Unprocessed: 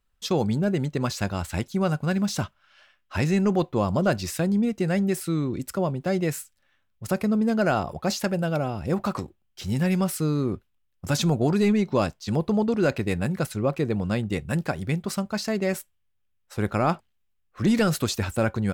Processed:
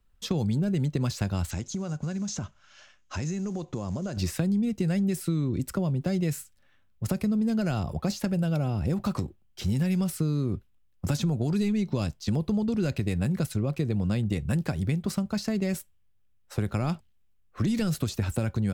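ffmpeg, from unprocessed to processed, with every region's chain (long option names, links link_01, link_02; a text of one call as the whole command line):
ffmpeg -i in.wav -filter_complex "[0:a]asettb=1/sr,asplit=3[link_01][link_02][link_03];[link_01]atrim=end=1.514[link_04];[link_02]atrim=start=1.51:end=4.17,asetpts=PTS-STARTPTS,afade=type=in:duration=0.004:curve=qsin,afade=type=out:start_time=2.656:duration=0.004:curve=qsin,acompressor=threshold=-34dB:ratio=10:attack=3.2:release=140:knee=1:detection=peak,acrusher=bits=7:mode=log:mix=0:aa=0.000001,lowpass=frequency=6600:width_type=q:width=7.1[link_05];[link_03]atrim=start=4.166[link_06];[link_04][link_05]acrossfade=duration=0.004:curve1=hsin:curve2=qsin[link_07];[link_07][link_06]acrossfade=duration=0.004:curve1=qsin:curve2=hsin,acrossover=split=180|2600[link_08][link_09][link_10];[link_08]acompressor=threshold=-32dB:ratio=4[link_11];[link_09]acompressor=threshold=-34dB:ratio=4[link_12];[link_10]acompressor=threshold=-36dB:ratio=4[link_13];[link_11][link_12][link_13]amix=inputs=3:normalize=0,lowshelf=frequency=420:gain=8,acompressor=threshold=-22dB:ratio=6" out.wav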